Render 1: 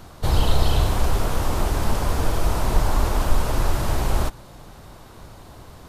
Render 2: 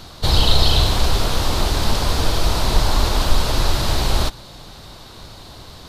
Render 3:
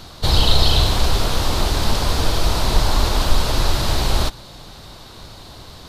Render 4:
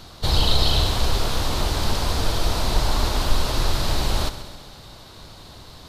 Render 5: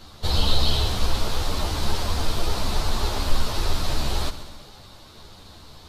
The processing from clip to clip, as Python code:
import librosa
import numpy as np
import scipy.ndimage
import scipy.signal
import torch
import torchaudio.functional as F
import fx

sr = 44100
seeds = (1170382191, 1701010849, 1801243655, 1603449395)

y1 = fx.peak_eq(x, sr, hz=4100.0, db=13.0, octaves=1.0)
y1 = y1 * librosa.db_to_amplitude(2.5)
y2 = y1
y3 = fx.echo_heads(y2, sr, ms=66, heads='first and second', feedback_pct=62, wet_db=-16.0)
y3 = y3 * librosa.db_to_amplitude(-4.0)
y4 = fx.ensemble(y3, sr)